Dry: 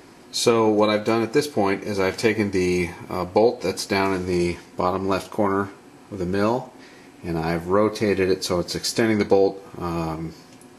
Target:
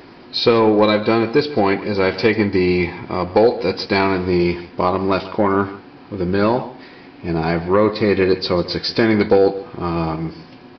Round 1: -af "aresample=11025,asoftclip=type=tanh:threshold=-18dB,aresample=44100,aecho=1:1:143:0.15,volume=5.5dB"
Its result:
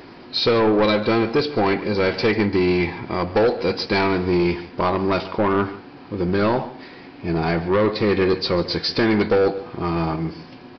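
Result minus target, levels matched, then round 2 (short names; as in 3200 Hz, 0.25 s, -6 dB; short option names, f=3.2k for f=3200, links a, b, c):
soft clip: distortion +11 dB
-af "aresample=11025,asoftclip=type=tanh:threshold=-8.5dB,aresample=44100,aecho=1:1:143:0.15,volume=5.5dB"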